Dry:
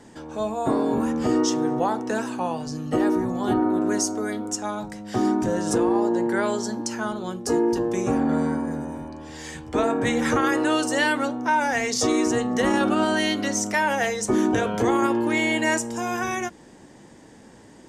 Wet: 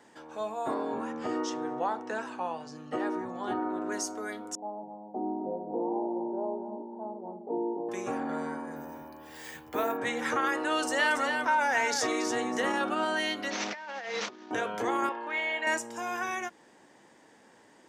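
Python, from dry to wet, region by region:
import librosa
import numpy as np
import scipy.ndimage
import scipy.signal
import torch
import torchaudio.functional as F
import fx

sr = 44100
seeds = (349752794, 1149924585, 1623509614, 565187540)

y = fx.chain(x, sr, fx.lowpass(hz=9900.0, slope=24),
    fx.high_shelf(hz=5100.0, db=-7.0), at=(0.74, 3.92))
y = fx.chain(y, sr, fx.cheby1_bandpass(low_hz=150.0, high_hz=910.0, order=5),
    fx.echo_single(ms=254, db=-8.5), at=(4.55, 7.89))
y = fx.chain(y, sr, fx.low_shelf(hz=120.0, db=6.0),
    fx.resample_bad(factor=3, down='none', up='hold'), at=(8.76, 9.97))
y = fx.chain(y, sr, fx.echo_single(ms=281, db=-8.5),
    fx.env_flatten(amount_pct=50), at=(10.71, 12.72))
y = fx.chain(y, sr, fx.delta_mod(bps=32000, step_db=-26.5),
    fx.highpass(hz=160.0, slope=12),
    fx.over_compress(threshold_db=-28.0, ratio=-0.5), at=(13.5, 14.51))
y = fx.chain(y, sr, fx.bandpass_edges(low_hz=520.0, high_hz=3300.0),
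    fx.doubler(ms=30.0, db=-11.5), at=(15.09, 15.67))
y = fx.highpass(y, sr, hz=1200.0, slope=6)
y = fx.peak_eq(y, sr, hz=8000.0, db=-9.5, octaves=2.7)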